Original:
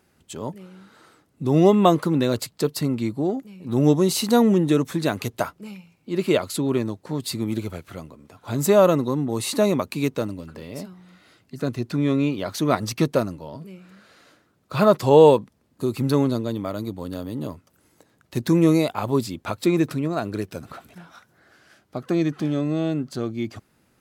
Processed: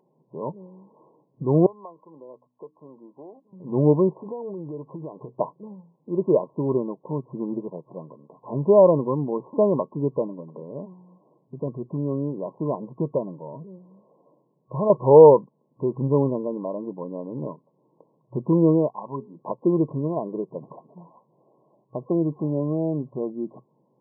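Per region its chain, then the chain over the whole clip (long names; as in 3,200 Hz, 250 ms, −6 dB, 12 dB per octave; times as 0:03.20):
0:01.66–0:03.53: first difference + hum removal 61.54 Hz, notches 5 + multiband upward and downward compressor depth 100%
0:04.09–0:05.29: low-pass filter 1,600 Hz + parametric band 220 Hz −13.5 dB 0.22 octaves + downward compressor 10 to 1, threshold −30 dBFS
0:11.58–0:14.90: downward compressor 1.5 to 1, threshold −24 dBFS + high-frequency loss of the air 460 metres
0:18.89–0:19.39: high-pass filter 190 Hz + parametric band 440 Hz −12.5 dB 2 octaves + mains-hum notches 60/120/180/240/300/360/420/480 Hz
whole clip: brick-wall band-pass 120–1,100 Hz; comb filter 2 ms, depth 37%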